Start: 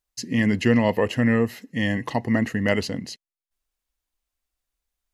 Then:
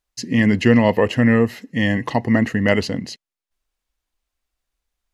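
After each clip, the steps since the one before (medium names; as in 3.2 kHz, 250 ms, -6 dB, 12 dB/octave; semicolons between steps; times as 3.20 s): treble shelf 8.1 kHz -8.5 dB; trim +5 dB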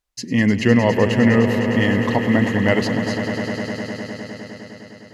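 echo with a slow build-up 102 ms, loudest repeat 5, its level -11.5 dB; trim -1 dB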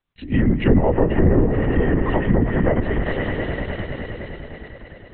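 LPC vocoder at 8 kHz whisper; low-pass that closes with the level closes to 830 Hz, closed at -11.5 dBFS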